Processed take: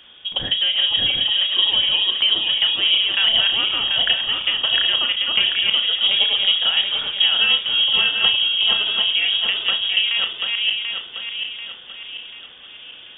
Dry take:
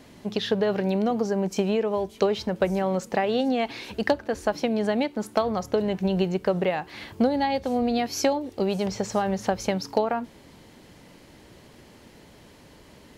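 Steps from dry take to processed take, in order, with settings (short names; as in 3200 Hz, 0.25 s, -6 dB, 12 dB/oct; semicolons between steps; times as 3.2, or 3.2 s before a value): regenerating reverse delay 0.369 s, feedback 68%, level -1.5 dB; inverted band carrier 3500 Hz; flutter echo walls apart 5.9 m, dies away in 0.22 s; gain +2.5 dB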